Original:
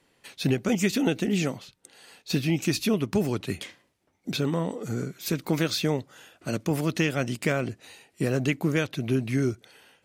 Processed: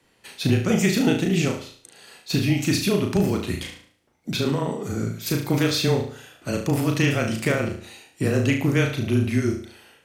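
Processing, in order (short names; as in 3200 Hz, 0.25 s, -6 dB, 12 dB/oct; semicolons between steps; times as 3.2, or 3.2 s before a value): frequency shift -19 Hz; flutter echo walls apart 6.2 m, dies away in 0.48 s; gain +2.5 dB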